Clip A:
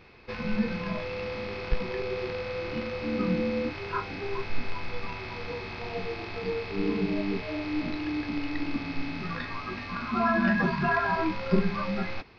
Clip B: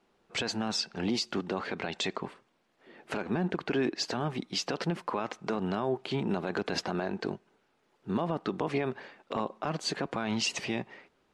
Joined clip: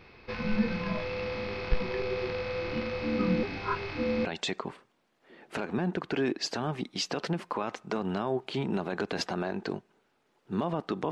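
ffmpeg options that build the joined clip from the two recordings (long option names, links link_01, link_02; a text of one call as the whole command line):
ffmpeg -i cue0.wav -i cue1.wav -filter_complex "[0:a]apad=whole_dur=11.11,atrim=end=11.11,asplit=2[link_01][link_02];[link_01]atrim=end=3.432[link_03];[link_02]atrim=start=3.428:end=4.252,asetpts=PTS-STARTPTS,areverse[link_04];[1:a]atrim=start=1.818:end=8.68[link_05];[link_03][link_04]acrossfade=duration=0.004:curve1=hsin:curve2=hsin[link_06];[link_06][link_05]acrossfade=duration=0.004:curve1=hsin:curve2=hsin" out.wav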